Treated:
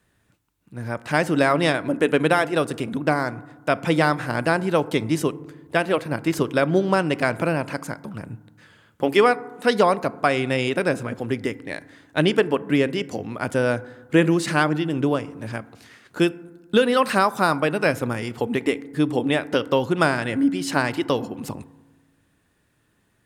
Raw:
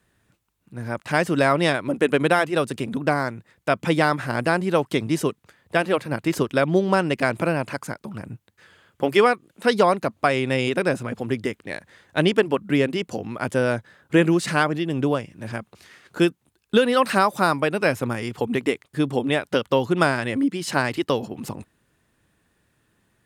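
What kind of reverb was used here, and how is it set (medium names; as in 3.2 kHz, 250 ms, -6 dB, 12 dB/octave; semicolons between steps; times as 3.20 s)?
FDN reverb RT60 1.2 s, low-frequency decay 1.35×, high-frequency decay 0.3×, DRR 16 dB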